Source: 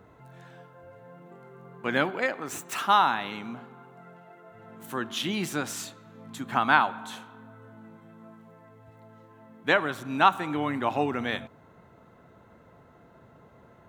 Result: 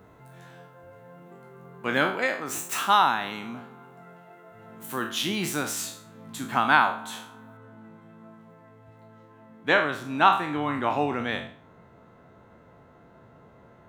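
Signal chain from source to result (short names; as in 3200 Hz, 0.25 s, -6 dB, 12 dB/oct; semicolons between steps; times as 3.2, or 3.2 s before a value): spectral trails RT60 0.45 s; high shelf 7700 Hz +6.5 dB, from 7.57 s -6 dB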